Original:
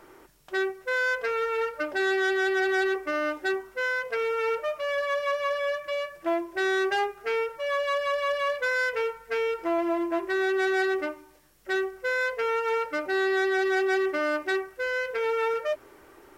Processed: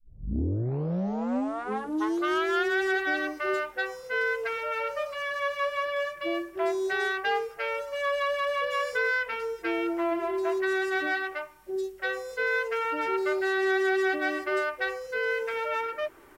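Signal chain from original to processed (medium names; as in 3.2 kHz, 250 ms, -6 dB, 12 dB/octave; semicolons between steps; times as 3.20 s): tape start-up on the opening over 2.44 s; three bands offset in time lows, highs, mids 80/330 ms, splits 520/5100 Hz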